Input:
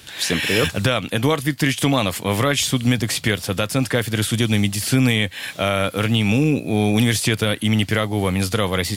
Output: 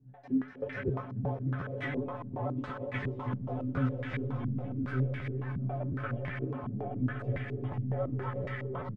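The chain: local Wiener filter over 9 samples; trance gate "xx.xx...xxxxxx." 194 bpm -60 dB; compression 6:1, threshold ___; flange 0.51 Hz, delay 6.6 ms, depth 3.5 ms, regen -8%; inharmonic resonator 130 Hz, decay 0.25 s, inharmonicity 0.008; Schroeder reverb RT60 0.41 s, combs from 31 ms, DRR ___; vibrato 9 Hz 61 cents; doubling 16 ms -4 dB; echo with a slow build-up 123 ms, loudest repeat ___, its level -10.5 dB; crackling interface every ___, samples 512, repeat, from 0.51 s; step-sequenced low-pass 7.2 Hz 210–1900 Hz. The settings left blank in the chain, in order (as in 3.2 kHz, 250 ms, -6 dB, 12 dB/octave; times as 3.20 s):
-24 dBFS, 9 dB, 5, 0.36 s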